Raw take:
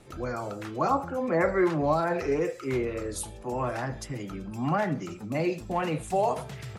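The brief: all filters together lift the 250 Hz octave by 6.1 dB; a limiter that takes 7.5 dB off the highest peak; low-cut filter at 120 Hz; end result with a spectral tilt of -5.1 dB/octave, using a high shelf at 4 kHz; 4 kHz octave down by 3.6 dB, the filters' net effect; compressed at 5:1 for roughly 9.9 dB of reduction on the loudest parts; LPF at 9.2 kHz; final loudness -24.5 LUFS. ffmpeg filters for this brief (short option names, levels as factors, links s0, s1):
-af "highpass=120,lowpass=9200,equalizer=f=250:t=o:g=9,highshelf=f=4000:g=-3,equalizer=f=4000:t=o:g=-3,acompressor=threshold=0.0447:ratio=5,volume=2.99,alimiter=limit=0.168:level=0:latency=1"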